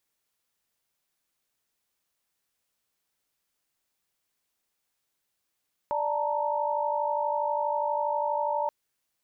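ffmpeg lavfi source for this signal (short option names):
-f lavfi -i "aevalsrc='0.0335*(sin(2*PI*587.33*t)+sin(2*PI*880*t)+sin(2*PI*932.33*t))':d=2.78:s=44100"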